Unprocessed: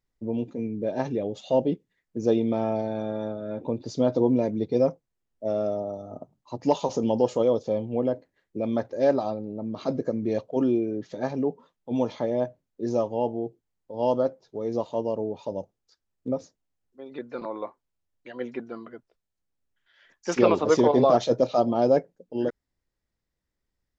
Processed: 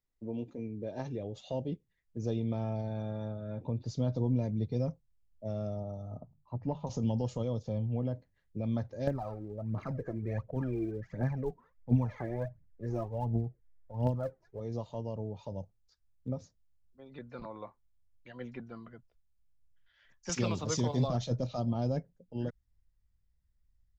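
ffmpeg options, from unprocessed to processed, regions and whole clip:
ffmpeg -i in.wav -filter_complex "[0:a]asettb=1/sr,asplit=3[link_01][link_02][link_03];[link_01]atrim=end=6.204[link_04];[link_02]atrim=start=6.2:end=6.87,asetpts=PTS-STARTPTS,afade=type=in:duration=0.004:curve=qsin,afade=type=out:start_time=0.666:duration=0.004:curve=qsin,lowpass=1400,bandreject=frequency=50:width_type=h:width=6,bandreject=frequency=100:width_type=h:width=6,bandreject=frequency=150:width_type=h:width=6[link_05];[link_03]atrim=start=6.866[link_06];[link_04][link_05]acrossfade=duration=0.004:curve1=hsin:curve2=qsin[link_07];[link_07][link_06]acrossfade=duration=0.004:curve1=qsin:curve2=hsin,asettb=1/sr,asplit=3[link_08][link_09][link_10];[link_08]atrim=end=9.074[link_11];[link_09]atrim=start=9.07:end=14.6,asetpts=PTS-STARTPTS,afade=type=in:duration=0.004:curve=qsin,afade=type=out:start_time=5.526:duration=0.004:curve=qsin,highshelf=frequency=2600:width_type=q:width=3:gain=-10,aphaser=in_gain=1:out_gain=1:delay=3.2:decay=0.67:speed=1.4:type=triangular[link_12];[link_10]atrim=start=14.596[link_13];[link_11][link_12]acrossfade=duration=0.004:curve1=hsin:curve2=qsin[link_14];[link_14][link_13]acrossfade=duration=0.004:curve1=qsin:curve2=hsin,asettb=1/sr,asplit=3[link_15][link_16][link_17];[link_15]atrim=end=20.294[link_18];[link_16]atrim=start=20.29:end=21.08,asetpts=PTS-STARTPTS,afade=type=in:duration=0.004:curve=qsin,afade=type=out:start_time=0.786:duration=0.004:curve=qsin,highpass=87,aemphasis=mode=production:type=75fm[link_19];[link_17]atrim=start=21.076[link_20];[link_18][link_19]acrossfade=duration=0.004:curve1=hsin:curve2=qsin[link_21];[link_21][link_20]acrossfade=duration=0.004:curve1=qsin:curve2=hsin,asubboost=boost=12:cutoff=100,acrossover=split=320|3000[link_22][link_23][link_24];[link_23]acompressor=threshold=-33dB:ratio=2[link_25];[link_22][link_25][link_24]amix=inputs=3:normalize=0,volume=-7.5dB" out.wav

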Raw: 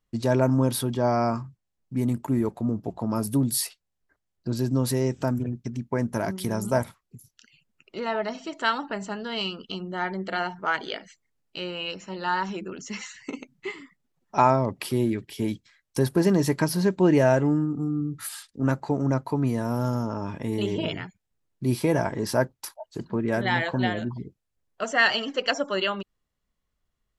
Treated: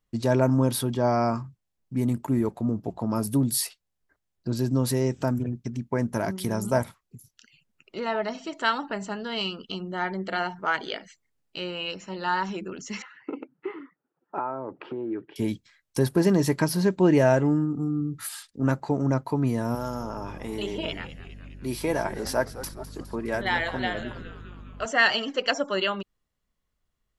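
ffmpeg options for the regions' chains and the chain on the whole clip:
ffmpeg -i in.wav -filter_complex "[0:a]asettb=1/sr,asplit=3[link_01][link_02][link_03];[link_01]atrim=end=13.024[link_04];[link_02]atrim=start=13.02:end=15.36,asetpts=PTS-STARTPTS,afade=type=in:duration=0.004:curve=qsin,afade=type=out:start_time=2.336:duration=0.004:curve=qsin,acompressor=threshold=-30dB:ratio=6:attack=3.2:release=140:knee=1:detection=peak,highpass=200,equalizer=frequency=210:width_type=q:width=4:gain=-5,equalizer=frequency=320:width_type=q:width=4:gain=9,equalizer=frequency=470:width_type=q:width=4:gain=6,equalizer=frequency=850:width_type=q:width=4:gain=4,equalizer=frequency=1400:width_type=q:width=4:gain=8,equalizer=frequency=2100:width_type=q:width=4:gain=-8,lowpass=frequency=2300:width=0.5412,lowpass=frequency=2300:width=1.3066[link_05];[link_03]atrim=start=15.356[link_06];[link_04][link_05]acrossfade=duration=0.004:curve1=hsin:curve2=qsin[link_07];[link_07][link_06]acrossfade=duration=0.004:curve1=qsin:curve2=hsin,asettb=1/sr,asplit=3[link_08][link_09][link_10];[link_08]atrim=end=19.754[link_11];[link_09]atrim=start=19.75:end=24.86,asetpts=PTS-STARTPTS,afade=type=in:duration=0.004:curve=qsin,afade=type=out:start_time=5.106:duration=0.004:curve=qsin,highpass=frequency=440:poles=1,aeval=exprs='val(0)+0.00794*(sin(2*PI*50*n/s)+sin(2*PI*2*50*n/s)/2+sin(2*PI*3*50*n/s)/3+sin(2*PI*4*50*n/s)/4+sin(2*PI*5*50*n/s)/5)':channel_layout=same,asplit=8[link_12][link_13][link_14][link_15][link_16][link_17][link_18][link_19];[link_13]adelay=206,afreqshift=-120,volume=-14dB[link_20];[link_14]adelay=412,afreqshift=-240,volume=-18.2dB[link_21];[link_15]adelay=618,afreqshift=-360,volume=-22.3dB[link_22];[link_16]adelay=824,afreqshift=-480,volume=-26.5dB[link_23];[link_17]adelay=1030,afreqshift=-600,volume=-30.6dB[link_24];[link_18]adelay=1236,afreqshift=-720,volume=-34.8dB[link_25];[link_19]adelay=1442,afreqshift=-840,volume=-38.9dB[link_26];[link_12][link_20][link_21][link_22][link_23][link_24][link_25][link_26]amix=inputs=8:normalize=0,atrim=end_sample=225351[link_27];[link_10]atrim=start=24.856[link_28];[link_11][link_27]acrossfade=duration=0.004:curve1=hsin:curve2=qsin[link_29];[link_29][link_28]acrossfade=duration=0.004:curve1=qsin:curve2=hsin" out.wav

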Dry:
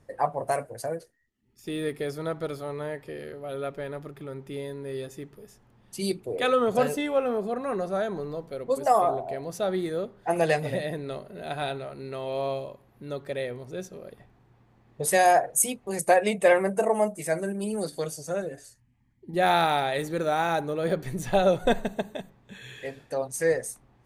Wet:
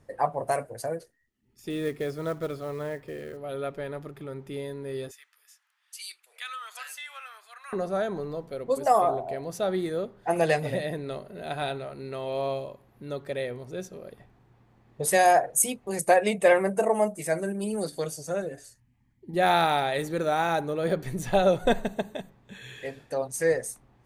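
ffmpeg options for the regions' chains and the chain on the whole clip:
ffmpeg -i in.wav -filter_complex "[0:a]asettb=1/sr,asplit=3[link_01][link_02][link_03];[link_01]atrim=end=1.704[link_04];[link_02]atrim=start=1.7:end=3.37,asetpts=PTS-STARTPTS,afade=type=in:duration=0.004:curve=qsin,afade=type=out:start_time=1.666:duration=0.004:curve=qsin,aemphasis=mode=reproduction:type=cd,bandreject=frequency=840:width=7.3,acrusher=bits=6:mode=log:mix=0:aa=0.000001[link_05];[link_03]atrim=start=3.366[link_06];[link_04][link_05]acrossfade=duration=0.004:curve1=hsin:curve2=qsin[link_07];[link_07][link_06]acrossfade=duration=0.004:curve1=qsin:curve2=hsin,asettb=1/sr,asplit=3[link_08][link_09][link_10];[link_08]atrim=end=5.114[link_11];[link_09]atrim=start=5.11:end=7.73,asetpts=PTS-STARTPTS,afade=type=in:duration=0.004:curve=qsin,afade=type=out:start_time=2.616:duration=0.004:curve=qsin,highpass=frequency=1400:width=0.5412,highpass=frequency=1400:width=1.3066,acompressor=threshold=-38dB:ratio=2:attack=3.2:release=140:knee=1:detection=peak[link_12];[link_10]atrim=start=7.726[link_13];[link_11][link_12]acrossfade=duration=0.004:curve1=hsin:curve2=qsin[link_14];[link_14][link_13]acrossfade=duration=0.004:curve1=qsin:curve2=hsin" out.wav

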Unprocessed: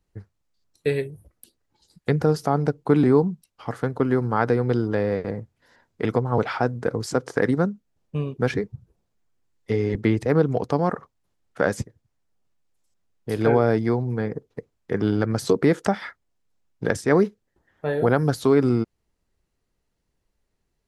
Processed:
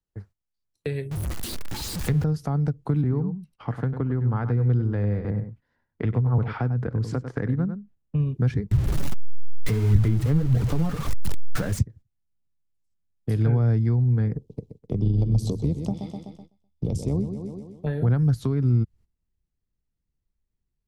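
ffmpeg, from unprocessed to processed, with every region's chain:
ffmpeg -i in.wav -filter_complex "[0:a]asettb=1/sr,asplit=3[link_01][link_02][link_03];[link_01]atrim=end=1.114[link_04];[link_02]atrim=start=1.11:end=2.24,asetpts=PTS-STARTPTS,afade=type=in:duration=0.004:curve=qsin,afade=type=out:start_time=1.126:duration=0.004:curve=qsin,aeval=exprs='val(0)+0.5*0.0422*sgn(val(0))':channel_layout=same,bandreject=frequency=141.8:width_type=h:width=4,bandreject=frequency=283.6:width_type=h:width=4,bandreject=frequency=425.4:width_type=h:width=4,bandreject=frequency=567.2:width_type=h:width=4,bandreject=frequency=709:width_type=h:width=4,bandreject=frequency=850.8:width_type=h:width=4,bandreject=frequency=992.6:width_type=h:width=4,bandreject=frequency=1134.4:width_type=h:width=4,bandreject=frequency=1276.2:width_type=h:width=4,bandreject=frequency=1418:width_type=h:width=4,bandreject=frequency=1559.8:width_type=h:width=4,bandreject=frequency=1701.6:width_type=h:width=4,bandreject=frequency=1843.4:width_type=h:width=4,bandreject=frequency=1985.2:width_type=h:width=4,bandreject=frequency=2127:width_type=h:width=4[link_05];[link_03]atrim=start=2.236[link_06];[link_04][link_05]acrossfade=duration=0.004:curve1=hsin:curve2=qsin[link_07];[link_07][link_06]acrossfade=duration=0.004:curve1=qsin:curve2=hsin,asettb=1/sr,asplit=3[link_08][link_09][link_10];[link_08]atrim=end=3.014[link_11];[link_09]atrim=start=3.01:end=8.2,asetpts=PTS-STARTPTS,afade=type=in:duration=0.004:curve=qsin,afade=type=out:start_time=5.186:duration=0.004:curve=qsin,bass=frequency=250:gain=-2,treble=frequency=4000:gain=-13,aecho=1:1:97:0.299,atrim=end_sample=228879[link_12];[link_10]atrim=start=8.196[link_13];[link_11][link_12]acrossfade=duration=0.004:curve1=hsin:curve2=qsin[link_14];[link_14][link_13]acrossfade=duration=0.004:curve1=qsin:curve2=hsin,asettb=1/sr,asplit=3[link_15][link_16][link_17];[link_15]atrim=end=8.714[link_18];[link_16]atrim=start=8.71:end=11.79,asetpts=PTS-STARTPTS,afade=type=in:duration=0.004:curve=qsin,afade=type=out:start_time=3.076:duration=0.004:curve=qsin,aeval=exprs='val(0)+0.5*0.0944*sgn(val(0))':channel_layout=same,flanger=delay=0.5:depth=6.7:regen=30:speed=1.6:shape=sinusoidal[link_19];[link_17]atrim=start=11.786[link_20];[link_18][link_19]acrossfade=duration=0.004:curve1=hsin:curve2=qsin[link_21];[link_21][link_20]acrossfade=duration=0.004:curve1=qsin:curve2=hsin,asettb=1/sr,asplit=3[link_22][link_23][link_24];[link_22]atrim=end=14.374[link_25];[link_23]atrim=start=14.37:end=17.87,asetpts=PTS-STARTPTS,afade=type=in:duration=0.004:curve=qsin,afade=type=out:start_time=3.496:duration=0.004:curve=qsin,tremolo=f=80:d=0.519,asuperstop=centerf=1600:order=4:qfactor=0.77,aecho=1:1:126|252|378|504|630|756:0.316|0.161|0.0823|0.0419|0.0214|0.0109,atrim=end_sample=154350[link_26];[link_24]atrim=start=17.866[link_27];[link_25][link_26]acrossfade=duration=0.004:curve1=hsin:curve2=qsin[link_28];[link_28][link_27]acrossfade=duration=0.004:curve1=qsin:curve2=hsin,agate=range=-15dB:threshold=-50dB:ratio=16:detection=peak,asubboost=boost=3.5:cutoff=250,acrossover=split=130[link_29][link_30];[link_30]acompressor=threshold=-28dB:ratio=6[link_31];[link_29][link_31]amix=inputs=2:normalize=0" out.wav

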